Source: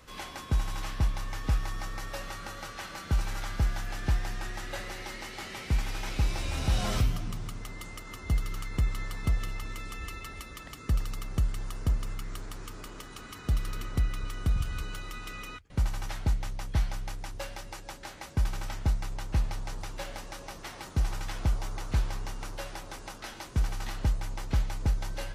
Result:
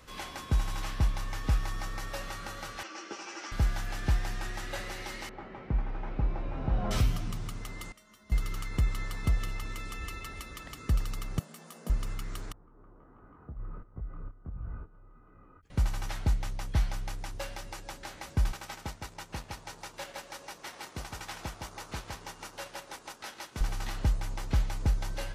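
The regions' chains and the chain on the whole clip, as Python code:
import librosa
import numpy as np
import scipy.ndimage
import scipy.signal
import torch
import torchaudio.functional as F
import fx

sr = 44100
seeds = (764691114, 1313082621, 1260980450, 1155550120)

y = fx.chain(x, sr, fx.cabinet(low_hz=290.0, low_slope=24, high_hz=6900.0, hz=(330.0, 2700.0, 3800.0, 5600.0), db=(10, 5, -7, 8)),
    fx.ensemble(), at=(2.83, 3.52))
y = fx.chain(y, sr, fx.lowpass(hz=1100.0, slope=12),
    fx.peak_eq(hz=78.0, db=-14.0, octaves=0.35), at=(5.29, 6.91))
y = fx.chain(y, sr, fx.low_shelf(hz=130.0, db=-11.5),
    fx.comb_fb(f0_hz=210.0, decay_s=0.21, harmonics='odd', damping=0.0, mix_pct=90), at=(7.92, 8.32))
y = fx.chain(y, sr, fx.cheby_ripple_highpass(hz=150.0, ripple_db=9),
    fx.high_shelf(hz=7800.0, db=10.0),
    fx.doubler(ms=17.0, db=-5.5), at=(11.39, 11.9))
y = fx.chain(y, sr, fx.lowpass(hz=1200.0, slope=24),
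    fx.level_steps(step_db=17),
    fx.detune_double(cents=48), at=(12.52, 15.63))
y = fx.chain(y, sr, fx.highpass(hz=350.0, slope=6),
    fx.transient(attack_db=-2, sustain_db=-8),
    fx.echo_single(ms=160, db=-6.0), at=(18.52, 23.61))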